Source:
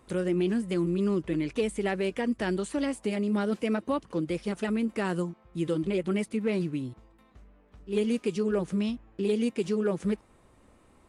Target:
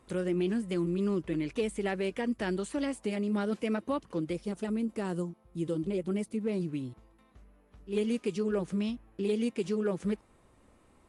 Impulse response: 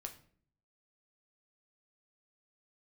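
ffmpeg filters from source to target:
-filter_complex "[0:a]asettb=1/sr,asplit=3[link_01][link_02][link_03];[link_01]atrim=end=4.334[link_04];[link_02]atrim=start=4.33:end=6.69,asetpts=PTS-STARTPTS,afade=type=in:duration=0.004:curve=qsin,afade=type=out:start_time=2.356:duration=0.004:curve=qsin,equalizer=frequency=2000:width=0.61:gain=-7.5[link_05];[link_03]atrim=start=6.686[link_06];[link_04][link_05]acrossfade=duration=0.004:curve1=hsin:curve2=qsin[link_07];[link_07][link_06]acrossfade=duration=0.004:curve1=qsin:curve2=hsin,volume=-3dB" -ar 44100 -c:a mp2 -b:a 96k

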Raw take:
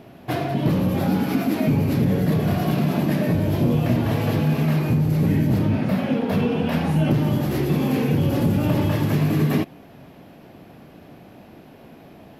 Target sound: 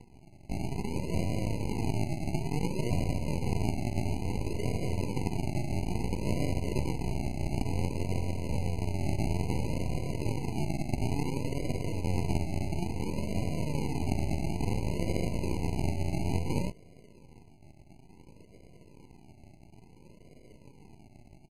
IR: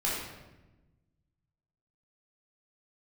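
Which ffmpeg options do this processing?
-filter_complex "[0:a]lowshelf=frequency=420:gain=-9,acrossover=split=100|490|3300[link_01][link_02][link_03][link_04];[link_01]acompressor=mode=upward:threshold=-53dB:ratio=2.5[link_05];[link_05][link_02][link_03][link_04]amix=inputs=4:normalize=0,aeval=exprs='max(val(0),0)':channel_layout=same,asuperstop=centerf=2200:order=8:qfactor=2.7,acrusher=samples=41:mix=1:aa=0.000001:lfo=1:lforange=24.6:lforate=1,asetrate=25442,aresample=44100,afftfilt=real='re*eq(mod(floor(b*sr/1024/1000),2),0)':imag='im*eq(mod(floor(b*sr/1024/1000),2),0)':win_size=1024:overlap=0.75"

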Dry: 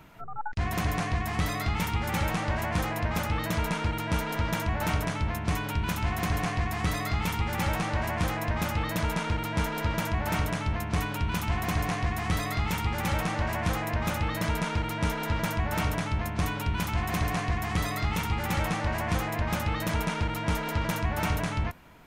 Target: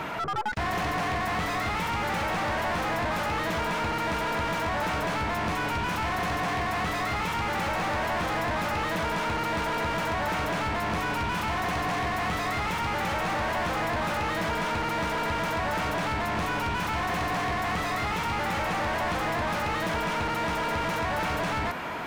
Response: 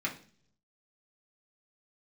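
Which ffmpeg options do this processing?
-filter_complex "[0:a]acompressor=threshold=-28dB:ratio=6,asplit=2[link_01][link_02];[link_02]highpass=frequency=720:poles=1,volume=35dB,asoftclip=type=tanh:threshold=-20.5dB[link_03];[link_01][link_03]amix=inputs=2:normalize=0,lowpass=frequency=1600:poles=1,volume=-6dB"

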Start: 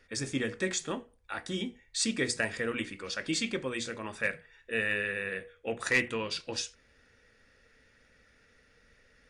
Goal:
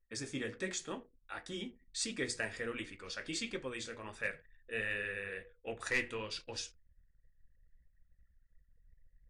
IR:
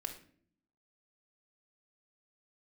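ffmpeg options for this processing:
-filter_complex "[0:a]asplit=2[link_01][link_02];[1:a]atrim=start_sample=2205[link_03];[link_02][link_03]afir=irnorm=-1:irlink=0,volume=-16dB[link_04];[link_01][link_04]amix=inputs=2:normalize=0,flanger=delay=5.5:depth=7.6:regen=-59:speed=1.4:shape=triangular,asubboost=boost=5.5:cutoff=64,anlmdn=0.000158,volume=-3.5dB"

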